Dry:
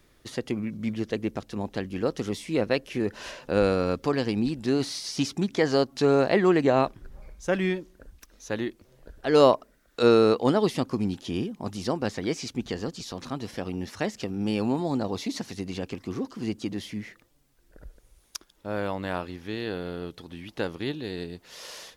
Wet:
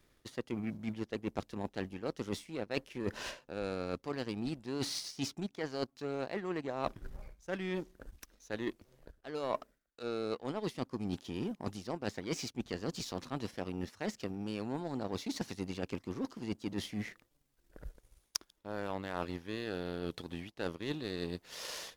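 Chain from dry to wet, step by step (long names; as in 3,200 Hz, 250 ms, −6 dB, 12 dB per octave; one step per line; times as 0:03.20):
reversed playback
downward compressor 16 to 1, threshold −35 dBFS, peak gain reduction 23 dB
reversed playback
power curve on the samples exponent 1.4
level +7 dB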